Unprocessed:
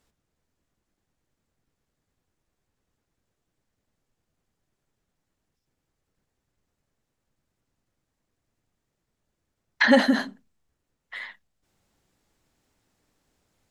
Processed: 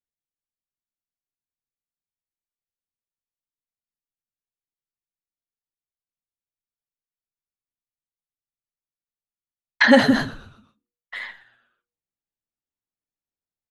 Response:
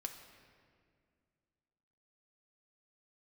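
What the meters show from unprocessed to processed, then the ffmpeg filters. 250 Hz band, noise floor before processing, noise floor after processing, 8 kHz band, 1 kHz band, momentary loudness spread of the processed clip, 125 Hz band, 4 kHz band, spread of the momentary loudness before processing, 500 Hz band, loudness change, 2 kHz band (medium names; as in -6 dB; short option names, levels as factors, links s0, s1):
+4.0 dB, -81 dBFS, under -85 dBFS, +4.0 dB, +4.0 dB, 20 LU, no reading, +4.0 dB, 20 LU, +4.0 dB, +4.0 dB, +4.0 dB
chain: -filter_complex "[0:a]agate=range=0.0224:threshold=0.00398:ratio=3:detection=peak,asplit=5[s0][s1][s2][s3][s4];[s1]adelay=123,afreqshift=-120,volume=0.133[s5];[s2]adelay=246,afreqshift=-240,volume=0.0575[s6];[s3]adelay=369,afreqshift=-360,volume=0.0245[s7];[s4]adelay=492,afreqshift=-480,volume=0.0106[s8];[s0][s5][s6][s7][s8]amix=inputs=5:normalize=0,asplit=2[s9][s10];[1:a]atrim=start_sample=2205,atrim=end_sample=4410[s11];[s10][s11]afir=irnorm=-1:irlink=0,volume=0.188[s12];[s9][s12]amix=inputs=2:normalize=0,volume=1.41"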